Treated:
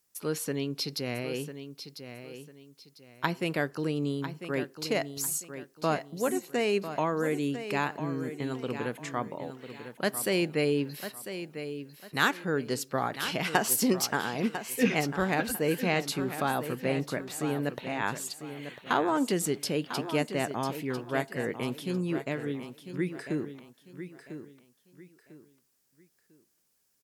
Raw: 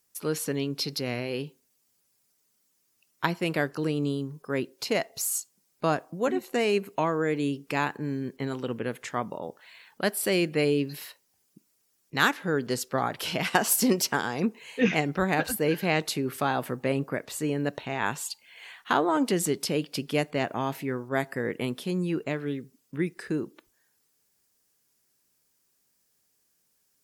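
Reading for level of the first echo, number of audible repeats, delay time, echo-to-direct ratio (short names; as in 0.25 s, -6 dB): -10.5 dB, 3, 0.998 s, -10.0 dB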